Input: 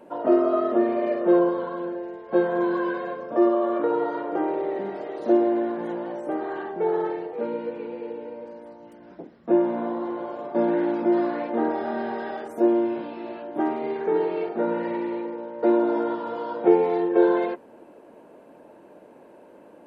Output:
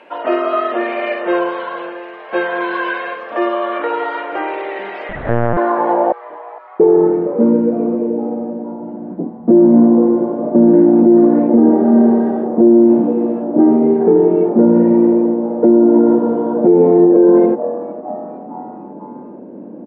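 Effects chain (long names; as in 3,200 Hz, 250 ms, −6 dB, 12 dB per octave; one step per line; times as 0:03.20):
band-pass filter sweep 2,600 Hz → 220 Hz, 0:04.96–0:07.10
0:06.12–0:06.80: noise gate −26 dBFS, range −51 dB
echo with shifted repeats 460 ms, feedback 54%, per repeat +130 Hz, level −19.5 dB
0:05.09–0:05.57: linear-prediction vocoder at 8 kHz pitch kept
high-shelf EQ 3,100 Hz −10.5 dB
boost into a limiter +26 dB
level −1 dB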